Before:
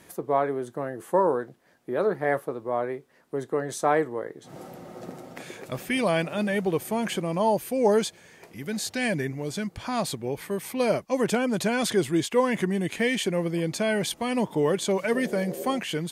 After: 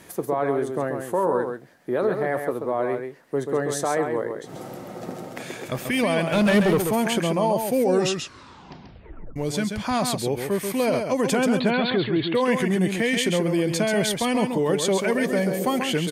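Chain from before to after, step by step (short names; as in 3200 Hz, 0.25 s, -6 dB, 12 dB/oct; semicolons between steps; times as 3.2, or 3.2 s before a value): 11.57–12.35 Chebyshev low-pass 4400 Hz, order 8; limiter -19.5 dBFS, peak gain reduction 9.5 dB; 6.32–6.82 sample leveller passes 2; 7.77 tape stop 1.59 s; echo 0.135 s -6 dB; gain +5 dB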